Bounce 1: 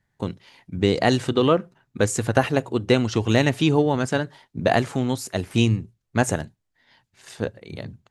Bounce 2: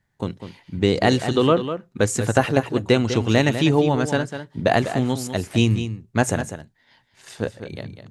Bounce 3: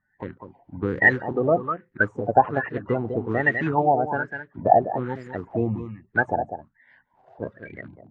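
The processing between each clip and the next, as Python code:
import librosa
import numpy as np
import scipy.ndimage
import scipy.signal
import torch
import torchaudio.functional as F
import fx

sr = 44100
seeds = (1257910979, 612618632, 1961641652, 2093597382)

y1 = x + 10.0 ** (-10.0 / 20.0) * np.pad(x, (int(199 * sr / 1000.0), 0))[:len(x)]
y1 = y1 * librosa.db_to_amplitude(1.0)
y2 = fx.spec_quant(y1, sr, step_db=30)
y2 = fx.filter_lfo_lowpass(y2, sr, shape='sine', hz=1.2, low_hz=700.0, high_hz=1900.0, q=7.2)
y2 = y2 * librosa.db_to_amplitude(-7.5)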